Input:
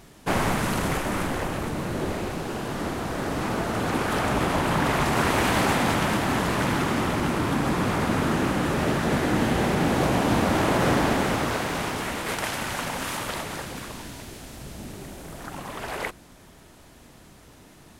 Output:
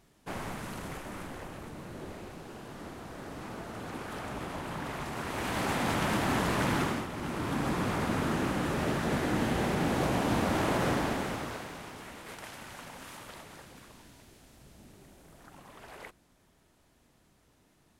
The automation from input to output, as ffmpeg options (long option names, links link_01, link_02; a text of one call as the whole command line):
ffmpeg -i in.wav -af "volume=3.5dB,afade=type=in:start_time=5.26:duration=0.98:silence=0.316228,afade=type=out:start_time=6.82:duration=0.26:silence=0.316228,afade=type=in:start_time=7.08:duration=0.55:silence=0.398107,afade=type=out:start_time=10.73:duration=1.06:silence=0.334965" out.wav